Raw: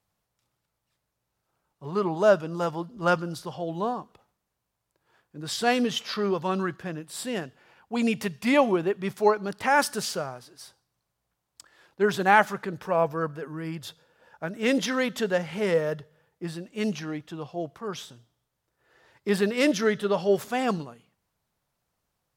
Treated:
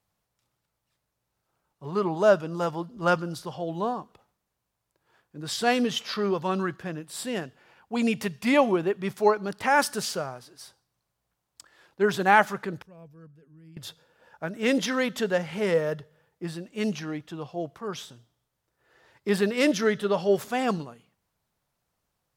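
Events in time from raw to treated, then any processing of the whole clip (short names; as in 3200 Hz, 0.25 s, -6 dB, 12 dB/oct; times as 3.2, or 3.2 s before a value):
12.82–13.77 passive tone stack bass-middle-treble 10-0-1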